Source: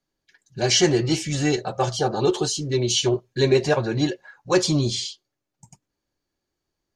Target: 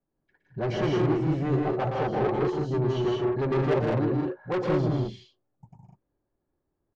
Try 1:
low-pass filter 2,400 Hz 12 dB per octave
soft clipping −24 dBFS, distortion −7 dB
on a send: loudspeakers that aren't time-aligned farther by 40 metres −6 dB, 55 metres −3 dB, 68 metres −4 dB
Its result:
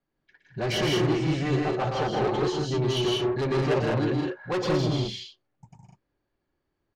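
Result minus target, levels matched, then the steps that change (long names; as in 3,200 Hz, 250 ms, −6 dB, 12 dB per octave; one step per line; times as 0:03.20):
2,000 Hz band +4.0 dB
change: low-pass filter 980 Hz 12 dB per octave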